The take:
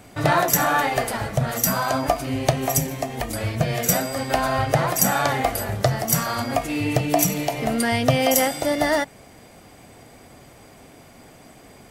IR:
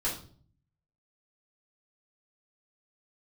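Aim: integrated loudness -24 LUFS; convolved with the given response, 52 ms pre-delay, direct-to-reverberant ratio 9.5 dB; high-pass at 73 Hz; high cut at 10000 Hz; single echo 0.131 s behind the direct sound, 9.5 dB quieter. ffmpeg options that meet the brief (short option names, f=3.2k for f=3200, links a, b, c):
-filter_complex "[0:a]highpass=73,lowpass=10k,aecho=1:1:131:0.335,asplit=2[a][b];[1:a]atrim=start_sample=2205,adelay=52[c];[b][c]afir=irnorm=-1:irlink=0,volume=-15.5dB[d];[a][d]amix=inputs=2:normalize=0,volume=-2.5dB"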